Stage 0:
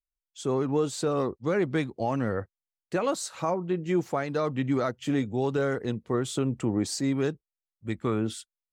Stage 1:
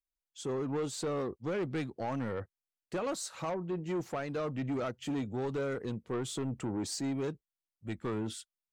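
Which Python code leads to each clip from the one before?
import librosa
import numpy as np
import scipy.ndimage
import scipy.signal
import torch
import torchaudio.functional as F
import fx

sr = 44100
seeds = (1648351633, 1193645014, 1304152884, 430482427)

y = 10.0 ** (-25.0 / 20.0) * np.tanh(x / 10.0 ** (-25.0 / 20.0))
y = y * 10.0 ** (-4.0 / 20.0)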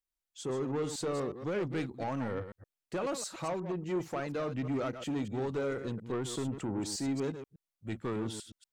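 y = fx.reverse_delay(x, sr, ms=120, wet_db=-9.5)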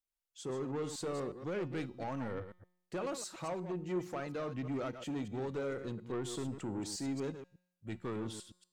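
y = fx.comb_fb(x, sr, f0_hz=180.0, decay_s=0.81, harmonics='all', damping=0.0, mix_pct=50)
y = y * 10.0 ** (1.5 / 20.0)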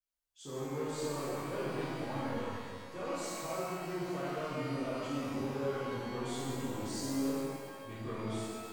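y = fx.rev_shimmer(x, sr, seeds[0], rt60_s=1.9, semitones=12, shimmer_db=-8, drr_db=-9.5)
y = y * 10.0 ** (-9.0 / 20.0)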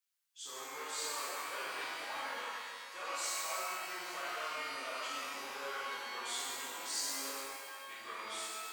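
y = scipy.signal.sosfilt(scipy.signal.butter(2, 1300.0, 'highpass', fs=sr, output='sos'), x)
y = y * 10.0 ** (6.5 / 20.0)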